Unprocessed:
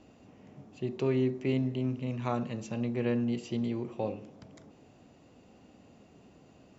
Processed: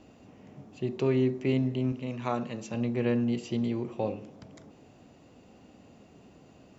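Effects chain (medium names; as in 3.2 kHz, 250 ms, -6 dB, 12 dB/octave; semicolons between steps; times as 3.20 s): 1.92–2.74 s: bass shelf 130 Hz -11 dB; trim +2.5 dB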